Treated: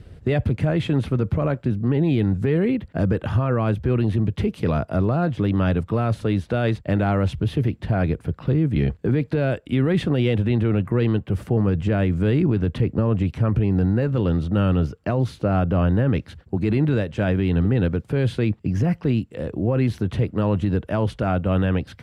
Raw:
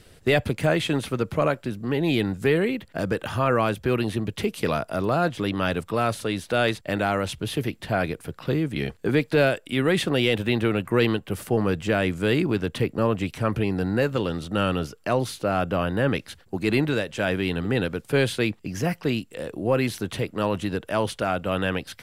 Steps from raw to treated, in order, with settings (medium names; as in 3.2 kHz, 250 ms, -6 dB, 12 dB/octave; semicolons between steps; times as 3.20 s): high-pass 48 Hz; RIAA curve playback; peak limiter -12 dBFS, peak gain reduction 9 dB